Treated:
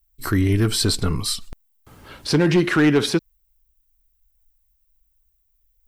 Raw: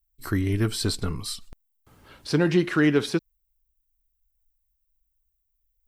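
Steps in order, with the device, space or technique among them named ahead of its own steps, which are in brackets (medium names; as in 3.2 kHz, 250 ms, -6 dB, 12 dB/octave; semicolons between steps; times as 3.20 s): clipper into limiter (hard clipper -15 dBFS, distortion -18 dB; peak limiter -19 dBFS, peak gain reduction 4 dB); trim +8.5 dB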